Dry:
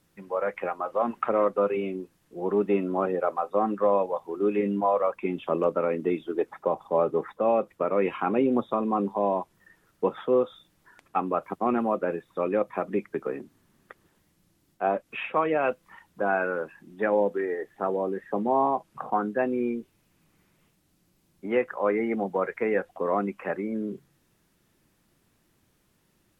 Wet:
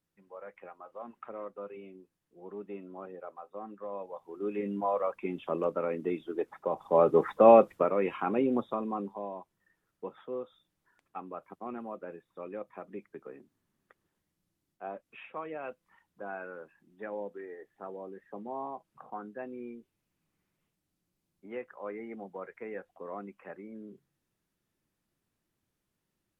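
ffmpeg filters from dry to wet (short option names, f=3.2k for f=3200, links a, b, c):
-af "volume=6.5dB,afade=t=in:st=3.88:d=1.07:silence=0.251189,afade=t=in:st=6.69:d=0.84:silence=0.237137,afade=t=out:st=7.53:d=0.42:silence=0.281838,afade=t=out:st=8.52:d=0.78:silence=0.298538"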